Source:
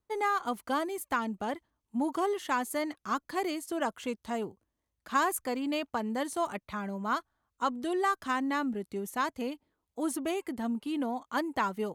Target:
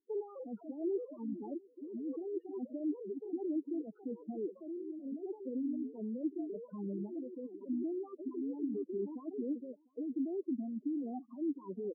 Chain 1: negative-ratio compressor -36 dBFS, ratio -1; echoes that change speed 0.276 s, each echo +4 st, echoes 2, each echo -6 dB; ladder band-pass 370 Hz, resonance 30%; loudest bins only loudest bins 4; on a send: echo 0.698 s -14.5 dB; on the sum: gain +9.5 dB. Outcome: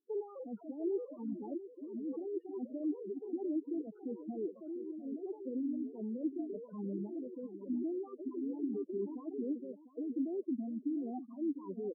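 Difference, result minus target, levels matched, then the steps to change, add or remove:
echo-to-direct +12 dB
change: echo 0.698 s -26.5 dB

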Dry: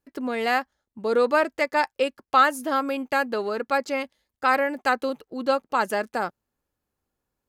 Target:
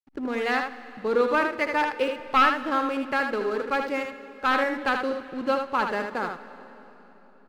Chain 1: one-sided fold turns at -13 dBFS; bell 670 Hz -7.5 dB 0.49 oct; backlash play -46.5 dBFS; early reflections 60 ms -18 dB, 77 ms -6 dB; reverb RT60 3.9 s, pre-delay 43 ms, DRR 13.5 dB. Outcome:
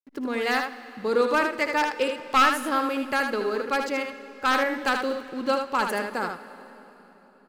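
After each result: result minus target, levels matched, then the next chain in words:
backlash: distortion -9 dB; 4000 Hz band +3.0 dB
one-sided fold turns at -13 dBFS; bell 670 Hz -7.5 dB 0.49 oct; backlash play -37 dBFS; early reflections 60 ms -18 dB, 77 ms -6 dB; reverb RT60 3.9 s, pre-delay 43 ms, DRR 13.5 dB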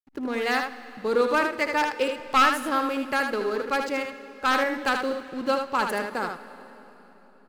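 4000 Hz band +2.5 dB
one-sided fold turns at -13 dBFS; LPF 3500 Hz 12 dB/oct; bell 670 Hz -7.5 dB 0.49 oct; backlash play -37 dBFS; early reflections 60 ms -18 dB, 77 ms -6 dB; reverb RT60 3.9 s, pre-delay 43 ms, DRR 13.5 dB

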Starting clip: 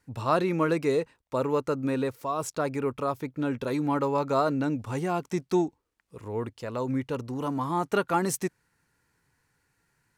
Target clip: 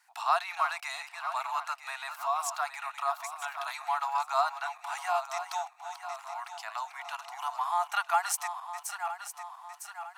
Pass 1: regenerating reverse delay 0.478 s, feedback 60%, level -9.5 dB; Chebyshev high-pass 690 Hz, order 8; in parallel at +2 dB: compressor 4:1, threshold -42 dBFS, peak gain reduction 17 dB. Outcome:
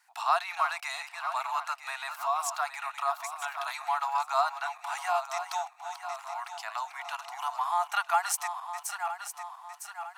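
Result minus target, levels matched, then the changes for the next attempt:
compressor: peak gain reduction -5 dB
change: compressor 4:1, threshold -48.5 dBFS, peak gain reduction 22 dB

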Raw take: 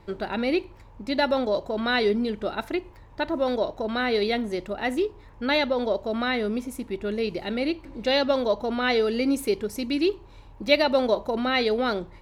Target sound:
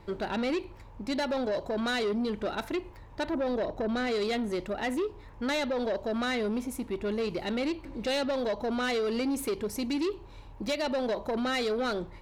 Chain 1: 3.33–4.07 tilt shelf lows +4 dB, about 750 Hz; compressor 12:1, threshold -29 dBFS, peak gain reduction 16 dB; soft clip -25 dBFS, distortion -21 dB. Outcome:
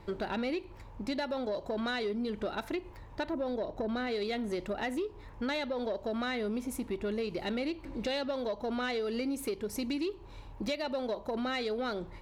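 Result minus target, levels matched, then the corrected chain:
compressor: peak gain reduction +7.5 dB
3.33–4.07 tilt shelf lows +4 dB, about 750 Hz; compressor 12:1, threshold -21 dBFS, peak gain reduction 9 dB; soft clip -25 dBFS, distortion -13 dB

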